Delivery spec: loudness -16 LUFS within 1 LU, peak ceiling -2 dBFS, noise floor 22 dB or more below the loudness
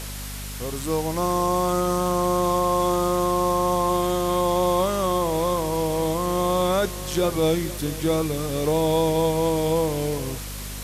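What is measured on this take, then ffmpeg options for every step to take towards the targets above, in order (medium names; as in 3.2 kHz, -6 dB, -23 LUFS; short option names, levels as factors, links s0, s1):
hum 50 Hz; highest harmonic 250 Hz; hum level -33 dBFS; noise floor -33 dBFS; noise floor target -45 dBFS; loudness -23.0 LUFS; peak level -10.5 dBFS; loudness target -16.0 LUFS
-> -af "bandreject=f=50:t=h:w=4,bandreject=f=100:t=h:w=4,bandreject=f=150:t=h:w=4,bandreject=f=200:t=h:w=4,bandreject=f=250:t=h:w=4"
-af "afftdn=nr=12:nf=-33"
-af "volume=2.24"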